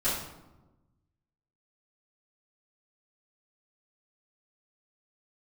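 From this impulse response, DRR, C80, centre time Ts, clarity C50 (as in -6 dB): -13.5 dB, 5.5 dB, 53 ms, 2.5 dB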